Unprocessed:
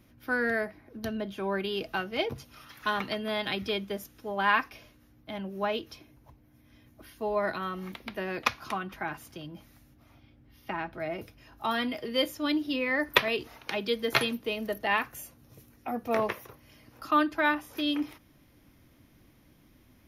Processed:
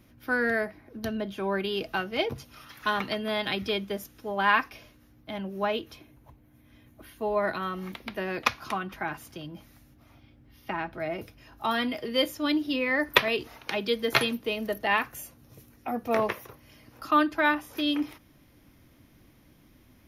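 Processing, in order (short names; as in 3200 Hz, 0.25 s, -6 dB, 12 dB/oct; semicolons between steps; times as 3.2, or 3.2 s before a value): 5.72–7.55 bell 5200 Hz -6.5 dB 0.44 oct; gain +2 dB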